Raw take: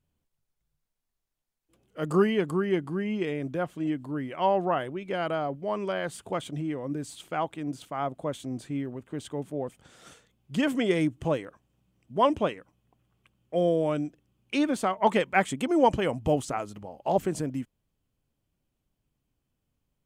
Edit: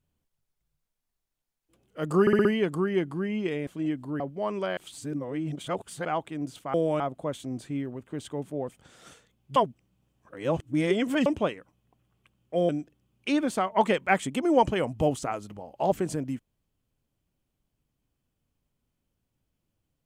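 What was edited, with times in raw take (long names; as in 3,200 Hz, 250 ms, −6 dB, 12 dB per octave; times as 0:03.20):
0:02.21: stutter 0.06 s, 5 plays
0:03.43–0:03.68: remove
0:04.21–0:05.46: remove
0:06.03–0:07.31: reverse
0:10.56–0:12.26: reverse
0:13.69–0:13.95: move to 0:08.00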